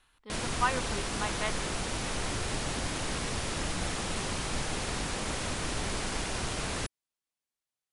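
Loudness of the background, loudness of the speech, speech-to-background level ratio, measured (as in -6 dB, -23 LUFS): -33.5 LUFS, -35.0 LUFS, -1.5 dB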